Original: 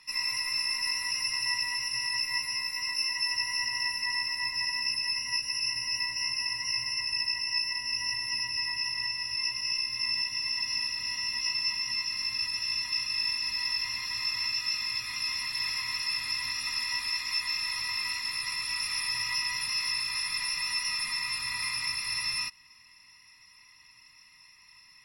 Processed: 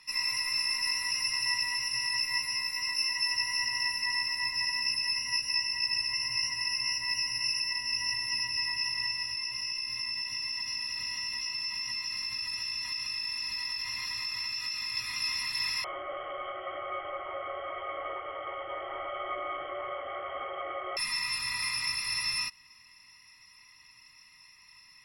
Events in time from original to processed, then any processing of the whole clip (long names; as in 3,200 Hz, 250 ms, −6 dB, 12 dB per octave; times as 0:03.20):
0:05.54–0:07.60: reverse
0:09.24–0:14.97: downward compressor, threshold −31 dBFS
0:15.84–0:20.97: voice inversion scrambler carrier 3,200 Hz